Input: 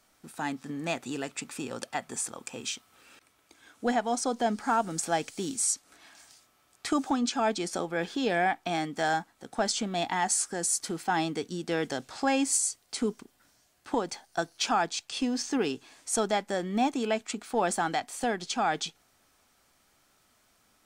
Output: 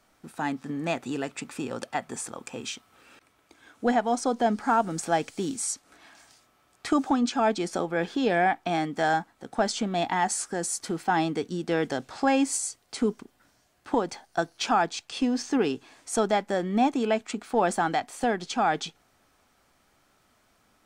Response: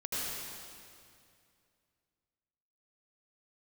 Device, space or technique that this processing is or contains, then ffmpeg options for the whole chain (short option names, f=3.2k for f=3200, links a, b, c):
behind a face mask: -af "highshelf=f=3.1k:g=-8,volume=4dB"